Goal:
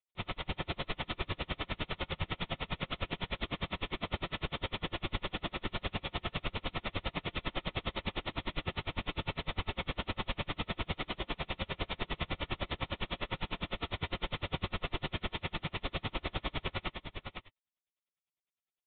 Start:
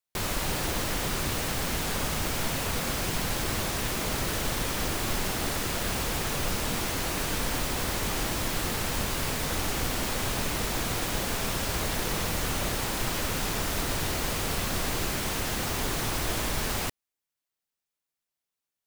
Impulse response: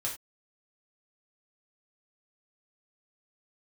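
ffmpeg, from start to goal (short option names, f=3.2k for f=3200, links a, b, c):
-filter_complex "[0:a]aecho=1:1:514:0.501,asplit=2[a][b];[1:a]atrim=start_sample=2205,highshelf=f=2.1k:g=11.5[c];[b][c]afir=irnorm=-1:irlink=0,volume=-4.5dB[d];[a][d]amix=inputs=2:normalize=0,aresample=8000,aresample=44100,bandreject=f=1.6k:w=5.9,aeval=exprs='val(0)*pow(10,-36*(0.5-0.5*cos(2*PI*9.9*n/s))/20)':c=same,volume=-6.5dB"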